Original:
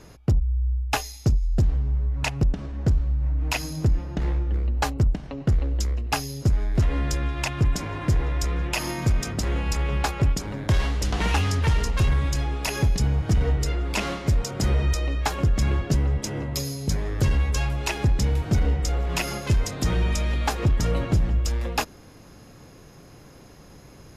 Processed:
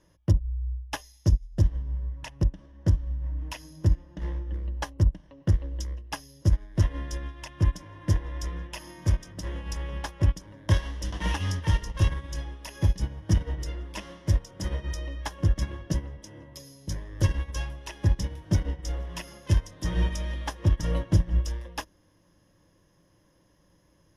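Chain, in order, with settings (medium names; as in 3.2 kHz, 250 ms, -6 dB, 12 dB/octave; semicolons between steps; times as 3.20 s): rippled EQ curve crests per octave 1.2, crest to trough 9 dB; upward expansion 2.5:1, over -26 dBFS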